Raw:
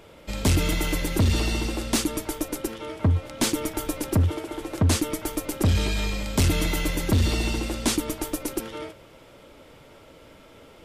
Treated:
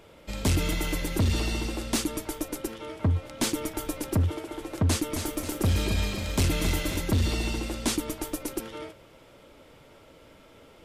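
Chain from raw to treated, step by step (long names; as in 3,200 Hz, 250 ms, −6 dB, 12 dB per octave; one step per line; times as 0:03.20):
0:04.89–0:07.00: feedback echo at a low word length 268 ms, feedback 55%, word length 9 bits, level −6.5 dB
level −3.5 dB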